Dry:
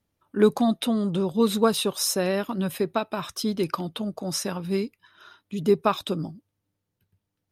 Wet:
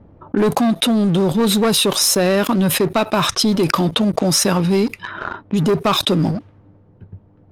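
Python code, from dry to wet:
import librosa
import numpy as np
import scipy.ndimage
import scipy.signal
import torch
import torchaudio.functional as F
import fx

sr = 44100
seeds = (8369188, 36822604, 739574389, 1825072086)

p1 = fx.leveller(x, sr, passes=3)
p2 = fx.rider(p1, sr, range_db=5, speed_s=0.5)
p3 = p1 + F.gain(torch.from_numpy(p2), 1.0).numpy()
p4 = fx.env_lowpass(p3, sr, base_hz=780.0, full_db=-8.5)
p5 = fx.env_flatten(p4, sr, amount_pct=70)
y = F.gain(torch.from_numpy(p5), -10.0).numpy()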